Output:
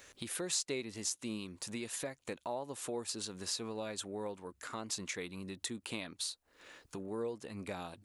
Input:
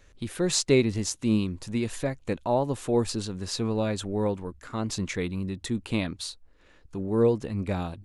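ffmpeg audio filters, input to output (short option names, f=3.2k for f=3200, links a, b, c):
-af "highpass=f=520:p=1,acompressor=threshold=-50dB:ratio=2.5,crystalizer=i=1:c=0,volume=5dB"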